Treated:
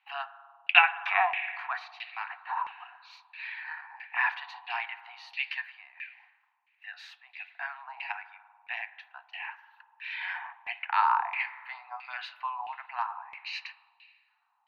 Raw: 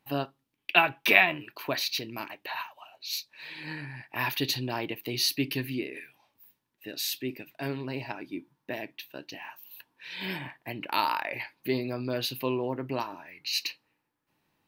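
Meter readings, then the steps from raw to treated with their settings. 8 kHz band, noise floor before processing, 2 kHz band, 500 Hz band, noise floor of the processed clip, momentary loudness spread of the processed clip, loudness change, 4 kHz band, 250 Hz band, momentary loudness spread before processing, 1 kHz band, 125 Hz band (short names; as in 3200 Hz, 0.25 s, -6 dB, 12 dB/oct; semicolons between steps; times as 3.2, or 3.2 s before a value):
under -25 dB, -80 dBFS, +0.5 dB, -13.0 dB, -72 dBFS, 19 LU, -1.0 dB, -7.5 dB, under -40 dB, 18 LU, +3.0 dB, under -40 dB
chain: Chebyshev high-pass 720 Hz, order 8; spring tank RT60 1.9 s, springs 48 ms, chirp 30 ms, DRR 13.5 dB; LFO low-pass saw down 1.5 Hz 930–2700 Hz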